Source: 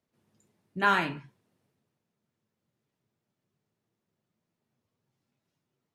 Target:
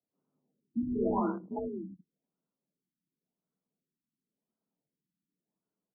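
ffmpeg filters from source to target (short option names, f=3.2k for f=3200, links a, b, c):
-filter_complex "[0:a]afreqshift=47,asplit=2[a][b];[b]aecho=0:1:187|196|319|744:0.531|0.473|0.119|0.355[c];[a][c]amix=inputs=2:normalize=0,afwtdn=0.00631,asplit=2[d][e];[e]aeval=exprs='(mod(15*val(0)+1,2)-1)/15':c=same,volume=-5.5dB[f];[d][f]amix=inputs=2:normalize=0,afftfilt=real='re*lt(b*sr/1024,330*pow(1600/330,0.5+0.5*sin(2*PI*0.92*pts/sr)))':imag='im*lt(b*sr/1024,330*pow(1600/330,0.5+0.5*sin(2*PI*0.92*pts/sr)))':win_size=1024:overlap=0.75,volume=2dB"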